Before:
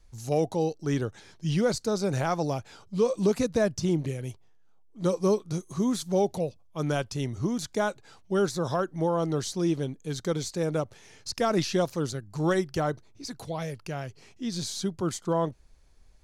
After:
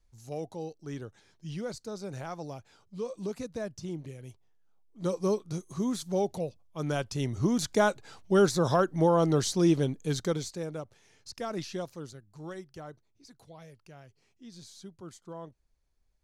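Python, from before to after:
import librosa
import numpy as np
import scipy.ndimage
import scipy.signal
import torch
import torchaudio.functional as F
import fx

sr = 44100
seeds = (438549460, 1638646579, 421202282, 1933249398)

y = fx.gain(x, sr, db=fx.line((4.09, -11.5), (5.17, -4.0), (6.81, -4.0), (7.61, 3.0), (10.11, 3.0), (10.74, -10.0), (11.74, -10.0), (12.5, -16.5)))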